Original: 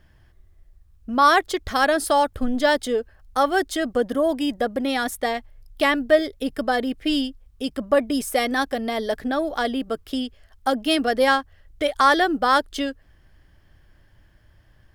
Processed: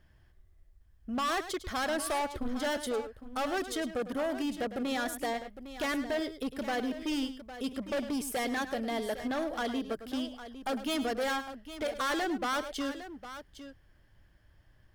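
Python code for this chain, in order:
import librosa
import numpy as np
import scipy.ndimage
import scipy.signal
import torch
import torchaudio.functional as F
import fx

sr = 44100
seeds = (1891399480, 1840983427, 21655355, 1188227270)

p1 = np.clip(x, -10.0 ** (-21.5 / 20.0), 10.0 ** (-21.5 / 20.0))
p2 = p1 + fx.echo_multitap(p1, sr, ms=(104, 807), db=(-12.5, -12.5), dry=0)
y = F.gain(torch.from_numpy(p2), -7.5).numpy()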